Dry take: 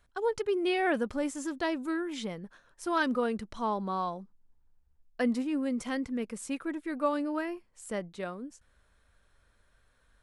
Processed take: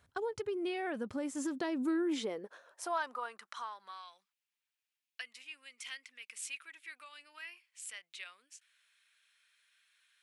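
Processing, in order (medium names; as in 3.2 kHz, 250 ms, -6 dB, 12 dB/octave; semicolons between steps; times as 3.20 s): compression 6:1, threshold -36 dBFS, peak gain reduction 12.5 dB; high-pass sweep 100 Hz -> 2.5 kHz, 0.98–4.15 s; trim +1 dB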